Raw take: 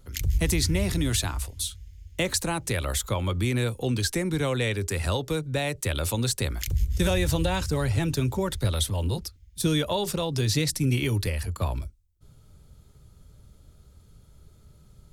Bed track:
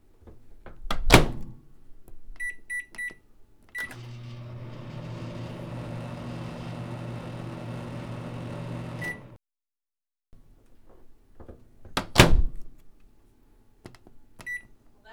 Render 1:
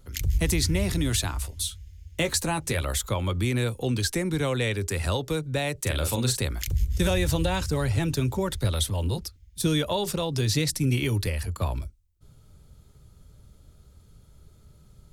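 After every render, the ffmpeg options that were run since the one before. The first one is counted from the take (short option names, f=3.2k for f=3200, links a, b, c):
-filter_complex "[0:a]asettb=1/sr,asplit=3[a][b][c];[a]atrim=end=1.434[d];[b]atrim=start=1.43:end=2.82,asetpts=PTS-STARTPTS,afade=t=in:d=0.004:c=qsin,afade=t=out:st=1.386:d=0.004:c=qsin,asplit=2[e][f];[f]adelay=13,volume=-8dB[g];[e][g]amix=inputs=2:normalize=0,atrim=end_sample=61299[h];[c]atrim=start=2.816[i];[d][h]acrossfade=d=0.004:c1=hsin:c2=qsin[j];[j][i]acrossfade=d=0.004:c1=qsin:c2=hsin,asettb=1/sr,asplit=3[k][l][m];[k]atrim=end=5.814[n];[l]atrim=start=5.81:end=6.4,asetpts=PTS-STARTPTS,afade=t=in:d=0.004:c=qsin,afade=t=out:st=0.586:d=0.004:c=qsin,asplit=2[o][p];[p]adelay=40,volume=-6.5dB[q];[o][q]amix=inputs=2:normalize=0,atrim=end_sample=26019[r];[m]atrim=start=6.396[s];[n][r]acrossfade=d=0.004:c1=hsin:c2=qsin[t];[t][s]acrossfade=d=0.004:c1=qsin:c2=hsin"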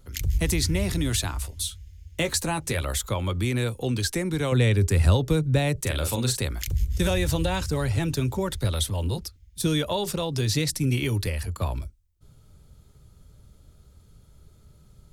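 -filter_complex "[0:a]asettb=1/sr,asplit=3[a][b][c];[a]atrim=end=4.524[d];[b]atrim=start=4.52:end=5.86,asetpts=PTS-STARTPTS,afade=t=in:d=0.004:c=qsin,afade=t=out:st=1.336:d=0.004:c=qsin,lowshelf=f=280:g=11[e];[c]atrim=start=5.856[f];[d][e]acrossfade=d=0.004:c1=hsin:c2=qsin[g];[g][f]acrossfade=d=0.004:c1=qsin:c2=hsin"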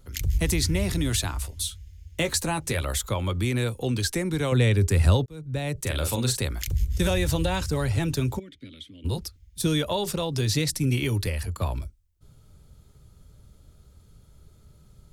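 -filter_complex "[0:a]asplit=3[a][b][c];[a]afade=t=out:st=8.38:d=0.02[d];[b]asplit=3[e][f][g];[e]bandpass=f=270:t=q:w=8,volume=0dB[h];[f]bandpass=f=2.29k:t=q:w=8,volume=-6dB[i];[g]bandpass=f=3.01k:t=q:w=8,volume=-9dB[j];[h][i][j]amix=inputs=3:normalize=0,afade=t=in:st=8.38:d=0.02,afade=t=out:st=9.04:d=0.02[k];[c]afade=t=in:st=9.04:d=0.02[l];[d][k][l]amix=inputs=3:normalize=0,asplit=2[m][n];[m]atrim=end=5.26,asetpts=PTS-STARTPTS,afade=t=out:st=5.256:d=0.004:c=hsin[o];[n]atrim=start=5.26,asetpts=PTS-STARTPTS,afade=t=in:d=0.73[p];[o][p]concat=n=2:v=0:a=1"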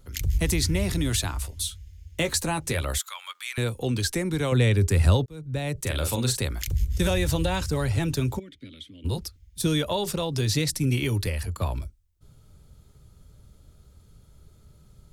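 -filter_complex "[0:a]asettb=1/sr,asplit=3[a][b][c];[a]atrim=end=2.984[d];[b]atrim=start=2.98:end=3.58,asetpts=PTS-STARTPTS,afade=t=in:d=0.004:c=qsin,afade=t=out:st=0.596:d=0.004:c=qsin,highpass=f=1.2k:w=0.5412,highpass=f=1.2k:w=1.3066[e];[c]atrim=start=3.576[f];[d][e]acrossfade=d=0.004:c1=hsin:c2=qsin[g];[g][f]acrossfade=d=0.004:c1=qsin:c2=hsin"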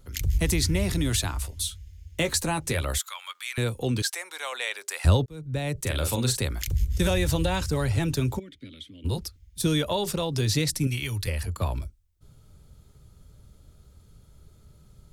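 -filter_complex "[0:a]asettb=1/sr,asplit=3[a][b][c];[a]atrim=end=4.024[d];[b]atrim=start=4.02:end=5.05,asetpts=PTS-STARTPTS,afade=t=in:d=0.004:c=qsin,afade=t=out:st=1.026:d=0.004:c=qsin,highpass=f=720:w=0.5412,highpass=f=720:w=1.3066[e];[c]atrim=start=5.046[f];[d][e]acrossfade=d=0.004:c1=hsin:c2=qsin[g];[g][f]acrossfade=d=0.004:c1=qsin:c2=hsin,asettb=1/sr,asplit=3[h][i][j];[h]atrim=end=10.874[k];[i]atrim=start=10.87:end=11.28,asetpts=PTS-STARTPTS,afade=t=in:d=0.004:c=qsin,afade=t=out:st=0.406:d=0.004:c=qsin,equalizer=f=340:t=o:w=2.5:g=-12[l];[j]atrim=start=11.276[m];[k][l]acrossfade=d=0.004:c1=hsin:c2=qsin[n];[n][m]acrossfade=d=0.004:c1=qsin:c2=hsin"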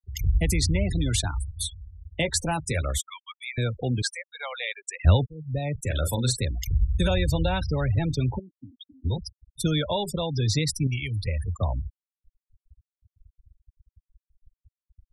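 -af "afftfilt=real='re*gte(hypot(re,im),0.0398)':imag='im*gte(hypot(re,im),0.0398)':win_size=1024:overlap=0.75,aecho=1:1:1.4:0.3"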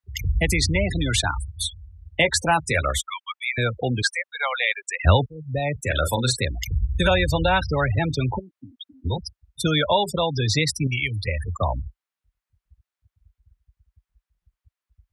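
-af "highpass=f=43:w=0.5412,highpass=f=43:w=1.3066,equalizer=f=1.4k:w=0.41:g=11.5"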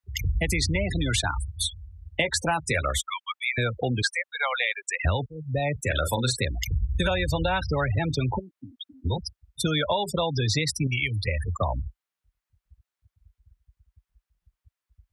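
-af "acompressor=threshold=-21dB:ratio=6"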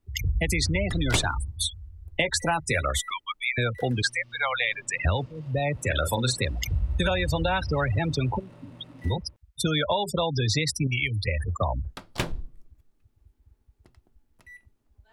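-filter_complex "[1:a]volume=-13.5dB[a];[0:a][a]amix=inputs=2:normalize=0"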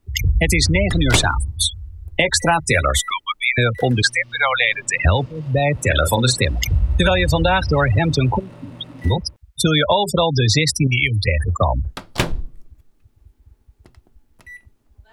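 -af "volume=9dB,alimiter=limit=-2dB:level=0:latency=1"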